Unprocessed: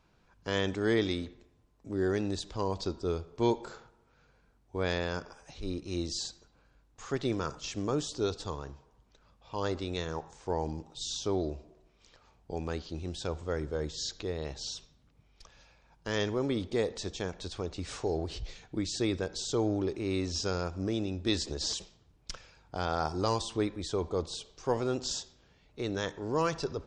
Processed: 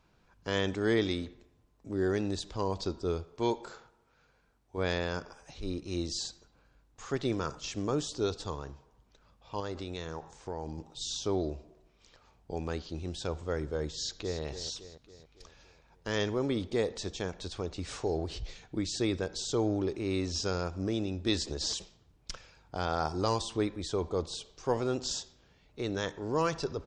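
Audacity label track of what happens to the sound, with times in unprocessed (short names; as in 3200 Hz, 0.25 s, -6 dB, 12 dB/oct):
3.240000	4.780000	low shelf 380 Hz -5.5 dB
9.600000	10.780000	compressor 2.5:1, threshold -35 dBFS
13.960000	14.410000	echo throw 0.28 s, feedback 55%, level -10.5 dB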